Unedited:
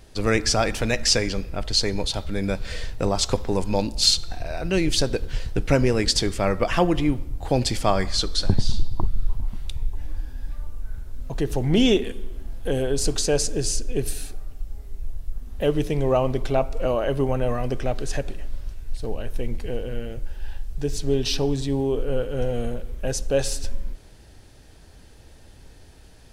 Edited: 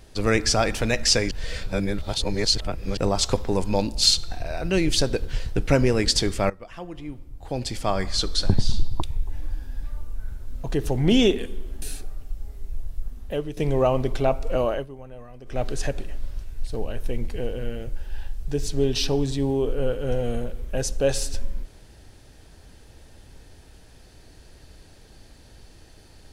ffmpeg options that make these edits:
-filter_complex "[0:a]asplit=9[s0][s1][s2][s3][s4][s5][s6][s7][s8];[s0]atrim=end=1.312[s9];[s1]atrim=start=1.308:end=2.972,asetpts=PTS-STARTPTS,areverse[s10];[s2]atrim=start=2.968:end=6.5,asetpts=PTS-STARTPTS,afade=t=out:st=3.528:d=0.004:c=hsin:silence=0.105925[s11];[s3]atrim=start=6.5:end=9.022,asetpts=PTS-STARTPTS,afade=t=in:d=1.79:c=qua:silence=0.105925[s12];[s4]atrim=start=9.678:end=12.482[s13];[s5]atrim=start=14.118:end=15.87,asetpts=PTS-STARTPTS,afade=t=out:st=1.242:d=0.51:silence=0.188365[s14];[s6]atrim=start=15.87:end=17.17,asetpts=PTS-STARTPTS,afade=t=in:d=0.004:c=hsin:silence=0.188365,afade=t=out:st=1.13:d=0.17:silence=0.125893[s15];[s7]atrim=start=17.17:end=17.75,asetpts=PTS-STARTPTS,volume=0.126[s16];[s8]atrim=start=17.75,asetpts=PTS-STARTPTS,afade=t=in:d=0.17:silence=0.125893[s17];[s9][s10]acrossfade=d=0.004:c1=hsin:c2=hsin[s18];[s11][s12]concat=n=2:v=0:a=1[s19];[s18][s19]acrossfade=d=0.004:c1=hsin:c2=hsin[s20];[s20][s13]acrossfade=d=0.004:c1=hsin:c2=hsin[s21];[s14][s15][s16][s17]concat=n=4:v=0:a=1[s22];[s21][s22]acrossfade=d=0.004:c1=hsin:c2=hsin"

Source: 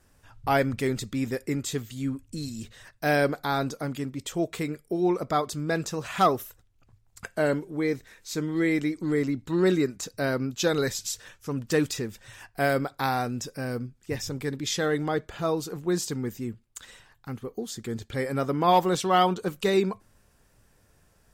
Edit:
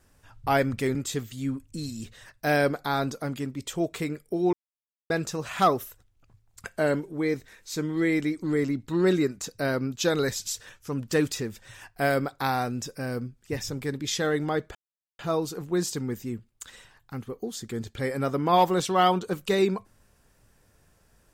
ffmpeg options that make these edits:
-filter_complex "[0:a]asplit=5[s0][s1][s2][s3][s4];[s0]atrim=end=0.952[s5];[s1]atrim=start=1.538:end=5.12,asetpts=PTS-STARTPTS,afade=t=out:st=3.578:d=0.004:c=hsin[s6];[s2]atrim=start=5.12:end=5.69,asetpts=PTS-STARTPTS,volume=0[s7];[s3]atrim=start=5.69:end=15.34,asetpts=PTS-STARTPTS,afade=t=in:d=0.004:c=hsin,afade=t=out:st=9.646:d=0.004:c=hsin,apad=pad_dur=0.44[s8];[s4]atrim=start=15.34,asetpts=PTS-STARTPTS,afade=t=in:d=0.004:c=hsin[s9];[s6][s7][s8][s9]concat=n=4:v=0:a=1[s10];[s5][s10]acrossfade=d=0.004:c1=hsin:c2=hsin"

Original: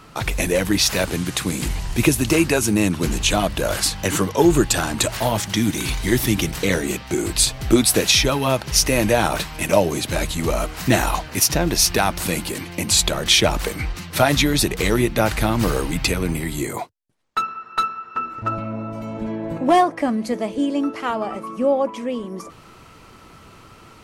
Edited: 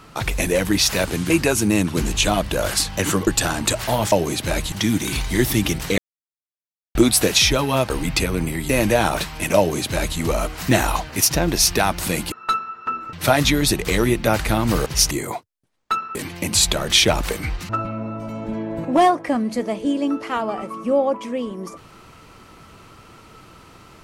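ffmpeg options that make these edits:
-filter_complex "[0:a]asplit=15[s0][s1][s2][s3][s4][s5][s6][s7][s8][s9][s10][s11][s12][s13][s14];[s0]atrim=end=1.302[s15];[s1]atrim=start=2.358:end=4.332[s16];[s2]atrim=start=4.598:end=5.452[s17];[s3]atrim=start=9.768:end=10.372[s18];[s4]atrim=start=5.448:end=6.71,asetpts=PTS-STARTPTS,afade=t=out:st=1.258:d=0.004:c=hsin[s19];[s5]atrim=start=6.71:end=7.68,asetpts=PTS-STARTPTS,volume=0[s20];[s6]atrim=start=7.68:end=8.632,asetpts=PTS-STARTPTS,afade=t=in:d=0.004:c=hsin[s21];[s7]atrim=start=15.778:end=16.572[s22];[s8]atrim=start=8.878:end=12.512[s23];[s9]atrim=start=17.608:end=18.422[s24];[s10]atrim=start=14.048:end=15.782[s25];[s11]atrim=start=8.628:end=8.882[s26];[s12]atrim=start=16.568:end=17.612[s27];[s13]atrim=start=12.508:end=14.052[s28];[s14]atrim=start=18.418[s29];[s15][s16]acrossfade=d=0.004:c1=hsin:c2=hsin[s30];[s30][s17]acrossfade=d=0.004:c1=hsin:c2=hsin[s31];[s31][s18]acrossfade=d=0.004:c1=hsin:c2=hsin[s32];[s19][s20][s21]concat=n=3:v=0:a=1[s33];[s32][s33]acrossfade=d=0.004:c1=hsin:c2=hsin[s34];[s34][s22]acrossfade=d=0.004:c1=hsin:c2=hsin[s35];[s35][s23]acrossfade=d=0.004:c1=hsin:c2=hsin[s36];[s36][s24]acrossfade=d=0.004:c1=hsin:c2=hsin[s37];[s37][s25]acrossfade=d=0.004:c1=hsin:c2=hsin[s38];[s38][s26]acrossfade=d=0.004:c1=hsin:c2=hsin[s39];[s39][s27]acrossfade=d=0.004:c1=hsin:c2=hsin[s40];[s40][s28]acrossfade=d=0.004:c1=hsin:c2=hsin[s41];[s41][s29]acrossfade=d=0.004:c1=hsin:c2=hsin"

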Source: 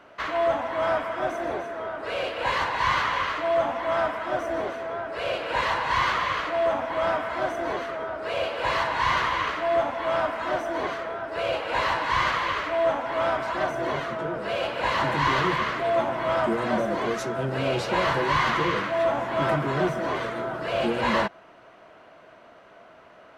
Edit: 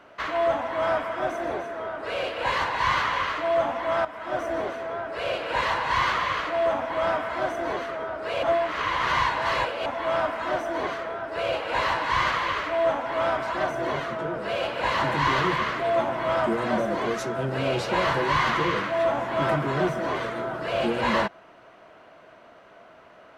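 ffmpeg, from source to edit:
-filter_complex "[0:a]asplit=4[s0][s1][s2][s3];[s0]atrim=end=4.05,asetpts=PTS-STARTPTS,afade=t=out:st=4.046:d=0.004:c=hsin:silence=0.199526[s4];[s1]atrim=start=4.05:end=8.432,asetpts=PTS-STARTPTS,afade=t=in:d=0.35:silence=0.199526[s5];[s2]atrim=start=8.428:end=9.862,asetpts=PTS-STARTPTS,areverse[s6];[s3]atrim=start=9.858[s7];[s4][s5]concat=n=2:v=0:a=1[s8];[s8][s6]acrossfade=d=0.004:c1=hsin:c2=hsin[s9];[s9][s7]acrossfade=d=0.004:c1=hsin:c2=hsin"

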